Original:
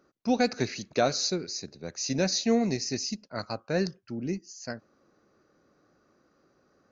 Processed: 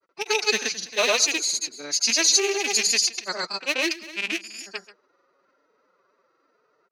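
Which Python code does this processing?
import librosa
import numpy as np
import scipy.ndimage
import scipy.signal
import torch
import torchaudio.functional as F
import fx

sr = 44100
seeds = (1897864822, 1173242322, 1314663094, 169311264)

p1 = fx.rattle_buzz(x, sr, strikes_db=-36.0, level_db=-21.0)
p2 = fx.env_lowpass(p1, sr, base_hz=2100.0, full_db=-24.5)
p3 = fx.tilt_eq(p2, sr, slope=4.5)
p4 = fx.pitch_keep_formants(p3, sr, semitones=9.5)
p5 = p4 + fx.echo_single(p4, sr, ms=240, db=-17.0, dry=0)
p6 = fx.granulator(p5, sr, seeds[0], grain_ms=100.0, per_s=20.0, spray_ms=100.0, spread_st=0)
y = p6 * 10.0 ** (5.0 / 20.0)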